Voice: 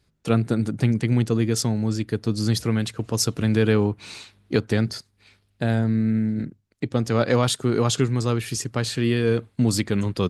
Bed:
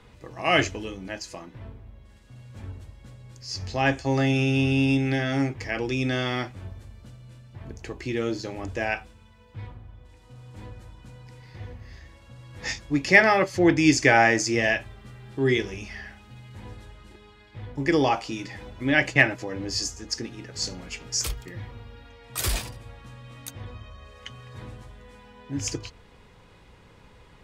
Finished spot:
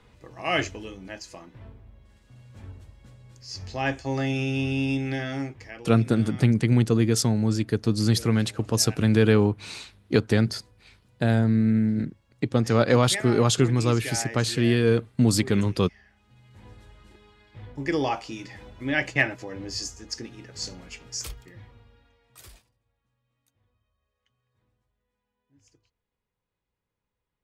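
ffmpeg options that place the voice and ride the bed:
-filter_complex "[0:a]adelay=5600,volume=1.06[s0];[1:a]volume=2.82,afade=t=out:st=5.21:d=0.66:silence=0.223872,afade=t=in:st=16.1:d=0.91:silence=0.223872,afade=t=out:st=20.69:d=1.95:silence=0.0354813[s1];[s0][s1]amix=inputs=2:normalize=0"

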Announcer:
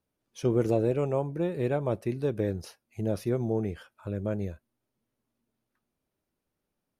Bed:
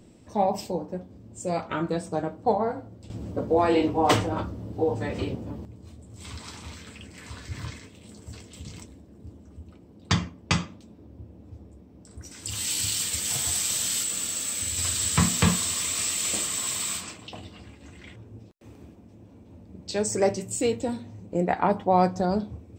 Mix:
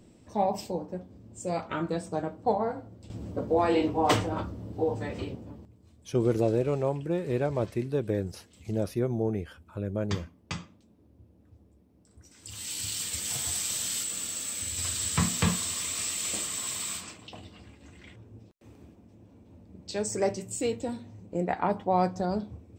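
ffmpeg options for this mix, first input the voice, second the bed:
-filter_complex "[0:a]adelay=5700,volume=1[s0];[1:a]volume=1.68,afade=t=out:st=4.86:d=0.9:silence=0.354813,afade=t=in:st=12.34:d=0.82:silence=0.421697[s1];[s0][s1]amix=inputs=2:normalize=0"

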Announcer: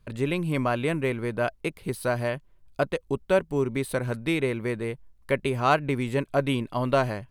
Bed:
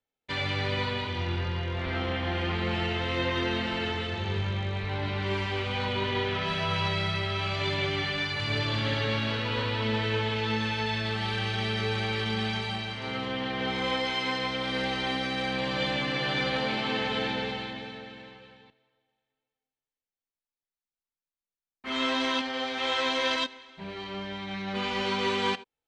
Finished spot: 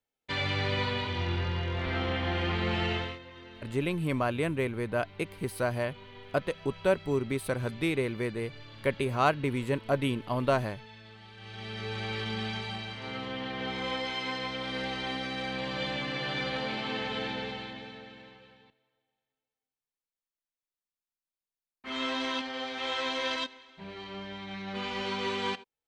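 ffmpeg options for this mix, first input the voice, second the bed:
-filter_complex "[0:a]adelay=3550,volume=0.668[s0];[1:a]volume=5.96,afade=t=out:st=2.94:d=0.25:silence=0.1,afade=t=in:st=11.36:d=0.77:silence=0.158489[s1];[s0][s1]amix=inputs=2:normalize=0"

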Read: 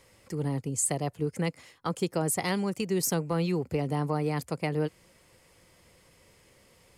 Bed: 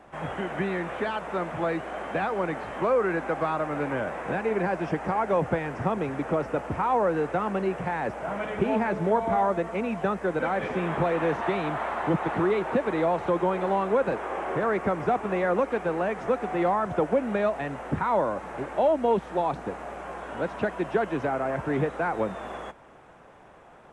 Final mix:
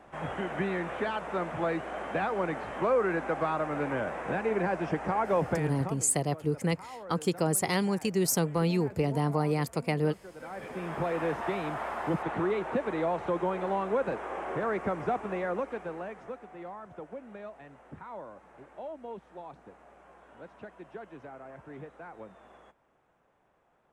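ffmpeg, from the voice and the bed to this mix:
-filter_complex "[0:a]adelay=5250,volume=1.12[s0];[1:a]volume=4.47,afade=t=out:st=5.44:d=0.64:silence=0.125893,afade=t=in:st=10.34:d=0.82:silence=0.16788,afade=t=out:st=15.06:d=1.42:silence=0.211349[s1];[s0][s1]amix=inputs=2:normalize=0"

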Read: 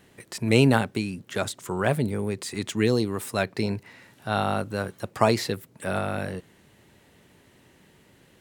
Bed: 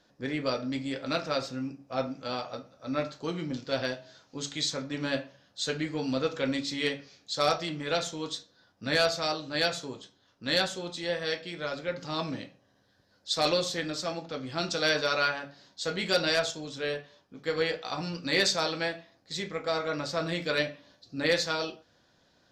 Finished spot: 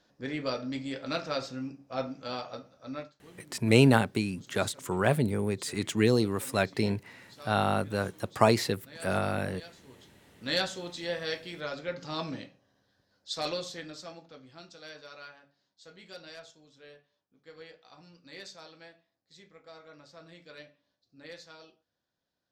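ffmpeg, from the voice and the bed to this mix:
-filter_complex "[0:a]adelay=3200,volume=0.841[s0];[1:a]volume=6.68,afade=t=out:st=2.77:d=0.36:silence=0.112202,afade=t=in:st=9.82:d=0.57:silence=0.112202,afade=t=out:st=12.41:d=2.29:silence=0.125893[s1];[s0][s1]amix=inputs=2:normalize=0"

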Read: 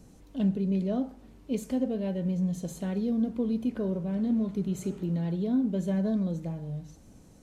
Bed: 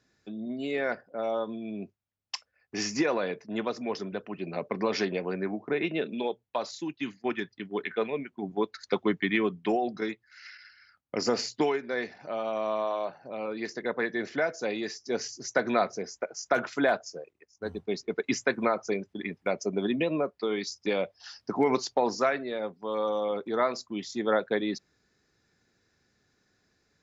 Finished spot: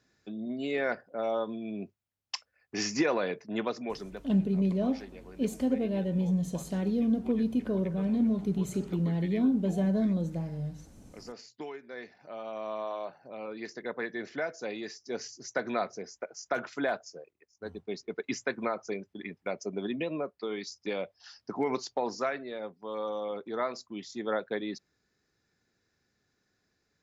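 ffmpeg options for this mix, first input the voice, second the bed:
-filter_complex "[0:a]adelay=3900,volume=1.06[s0];[1:a]volume=3.98,afade=t=out:st=3.63:d=0.8:silence=0.133352,afade=t=in:st=11.43:d=1.49:silence=0.237137[s1];[s0][s1]amix=inputs=2:normalize=0"

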